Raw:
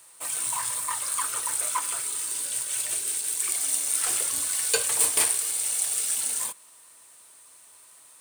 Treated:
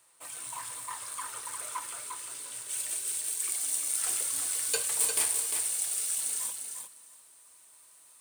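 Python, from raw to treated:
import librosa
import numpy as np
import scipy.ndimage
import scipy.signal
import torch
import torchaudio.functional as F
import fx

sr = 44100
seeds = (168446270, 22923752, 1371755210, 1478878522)

y = fx.high_shelf(x, sr, hz=4600.0, db=fx.steps((0.0, -5.0), (2.68, 3.0)))
y = fx.echo_feedback(y, sr, ms=351, feedback_pct=15, wet_db=-6.0)
y = F.gain(torch.from_numpy(y), -8.0).numpy()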